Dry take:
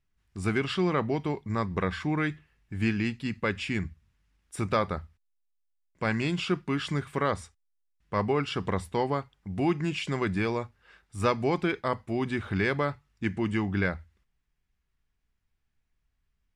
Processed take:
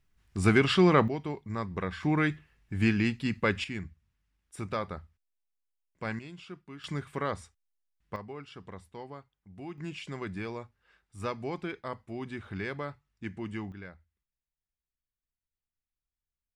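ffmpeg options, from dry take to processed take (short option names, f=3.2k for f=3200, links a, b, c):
-af "asetnsamples=n=441:p=0,asendcmd='1.08 volume volume -5dB;2.03 volume volume 1.5dB;3.64 volume volume -7dB;6.19 volume volume -17dB;6.84 volume volume -5dB;8.16 volume volume -16dB;9.78 volume volume -9dB;13.72 volume volume -18dB',volume=5dB"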